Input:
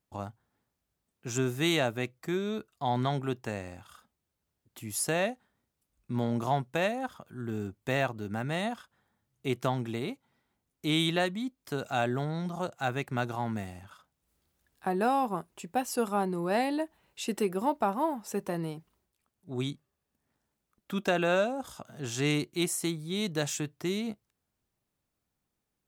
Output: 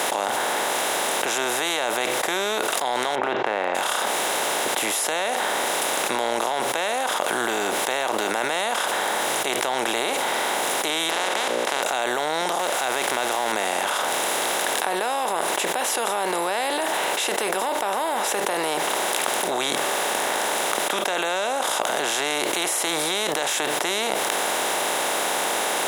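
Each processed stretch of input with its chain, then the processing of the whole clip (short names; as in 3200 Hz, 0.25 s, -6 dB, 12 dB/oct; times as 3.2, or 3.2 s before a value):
3.15–3.75 Bessel low-pass 1500 Hz, order 6 + compressor 2:1, threshold -34 dBFS
11.09–11.82 spectral contrast lowered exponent 0.22 + tape spacing loss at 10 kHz 25 dB + notches 60/120/180/240/300/360/420/480/540/600 Hz
12.59–13.52 zero-crossing step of -42 dBFS + high shelf 4100 Hz +5 dB
whole clip: per-bin compression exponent 0.4; HPF 540 Hz 12 dB/oct; fast leveller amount 100%; gain -3.5 dB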